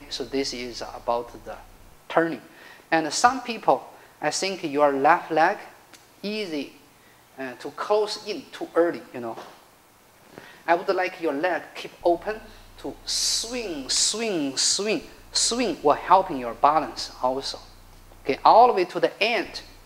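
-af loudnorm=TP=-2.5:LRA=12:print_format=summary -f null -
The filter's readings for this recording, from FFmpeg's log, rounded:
Input Integrated:    -23.2 LUFS
Input True Peak:      -1.7 dBTP
Input LRA:             6.4 LU
Input Threshold:     -34.4 LUFS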